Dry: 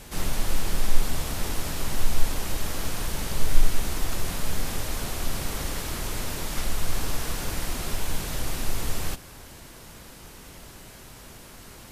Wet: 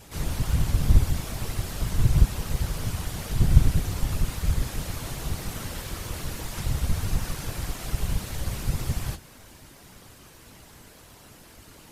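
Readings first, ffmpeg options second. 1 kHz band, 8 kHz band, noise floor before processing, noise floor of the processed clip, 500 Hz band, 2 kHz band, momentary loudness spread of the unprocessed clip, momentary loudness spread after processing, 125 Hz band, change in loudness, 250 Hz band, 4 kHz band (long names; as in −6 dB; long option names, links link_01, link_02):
−3.5 dB, −4.0 dB, −46 dBFS, −50 dBFS, −3.0 dB, −3.5 dB, 15 LU, 12 LU, +8.5 dB, +3.0 dB, +2.5 dB, −4.0 dB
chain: -af "flanger=delay=9.4:depth=6.5:regen=32:speed=1.8:shape=triangular,afftfilt=real='hypot(re,im)*cos(2*PI*random(0))':imag='hypot(re,im)*sin(2*PI*random(1))':win_size=512:overlap=0.75,volume=6dB"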